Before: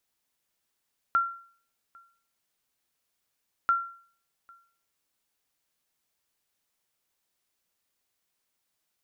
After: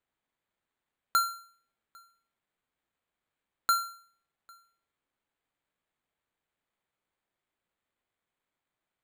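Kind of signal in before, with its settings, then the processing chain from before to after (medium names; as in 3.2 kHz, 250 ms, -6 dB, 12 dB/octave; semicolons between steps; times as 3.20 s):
sonar ping 1.37 kHz, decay 0.49 s, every 2.54 s, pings 2, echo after 0.80 s, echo -29 dB -17 dBFS
careless resampling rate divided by 8×, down filtered, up hold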